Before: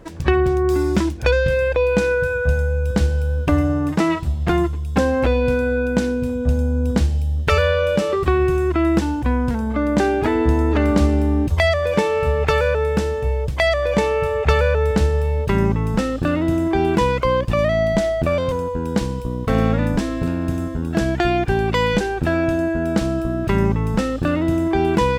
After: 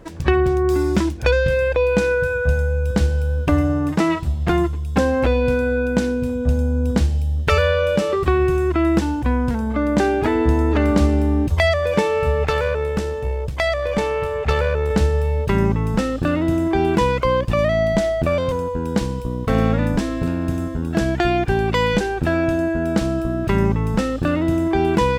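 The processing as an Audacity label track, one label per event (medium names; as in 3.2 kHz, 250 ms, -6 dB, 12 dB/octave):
12.460000	14.910000	valve stage drive 8 dB, bias 0.55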